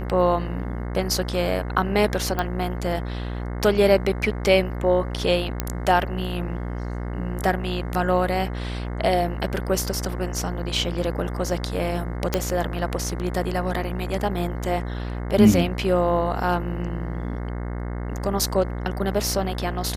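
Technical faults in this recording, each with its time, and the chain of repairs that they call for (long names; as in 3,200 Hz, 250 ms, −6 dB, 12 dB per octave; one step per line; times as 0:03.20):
mains buzz 60 Hz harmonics 36 −29 dBFS
0:02.39: click −11 dBFS
0:05.60: click −7 dBFS
0:12.34: click −6 dBFS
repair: click removal
hum removal 60 Hz, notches 36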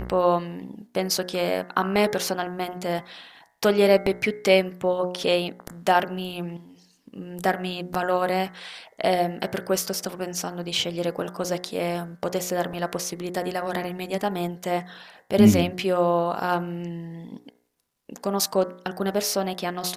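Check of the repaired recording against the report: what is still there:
none of them is left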